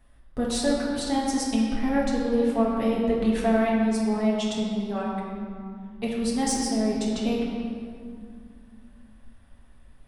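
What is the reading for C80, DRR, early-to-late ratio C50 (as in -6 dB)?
1.5 dB, -5.5 dB, 0.0 dB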